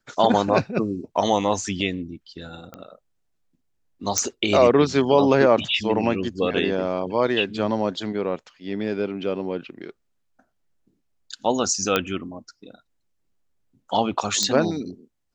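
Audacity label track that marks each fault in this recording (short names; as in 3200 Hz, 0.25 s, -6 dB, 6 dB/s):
2.740000	2.740000	pop -22 dBFS
4.180000	4.180000	pop -6 dBFS
11.960000	11.960000	pop -6 dBFS
14.430000	14.430000	pop -8 dBFS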